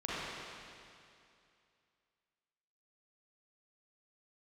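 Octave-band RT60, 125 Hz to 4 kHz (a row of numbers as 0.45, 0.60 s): 2.5, 2.5, 2.5, 2.5, 2.5, 2.4 s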